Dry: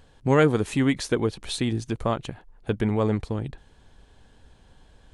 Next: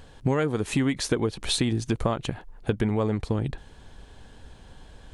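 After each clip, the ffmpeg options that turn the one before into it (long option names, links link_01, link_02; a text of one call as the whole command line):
ffmpeg -i in.wav -af "acompressor=threshold=-27dB:ratio=8,volume=6.5dB" out.wav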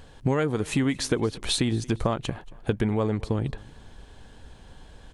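ffmpeg -i in.wav -af "aecho=1:1:230|460:0.075|0.0247" out.wav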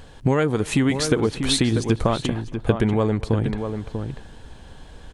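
ffmpeg -i in.wav -filter_complex "[0:a]asplit=2[link_01][link_02];[link_02]adelay=641.4,volume=-7dB,highshelf=frequency=4000:gain=-14.4[link_03];[link_01][link_03]amix=inputs=2:normalize=0,volume=4.5dB" out.wav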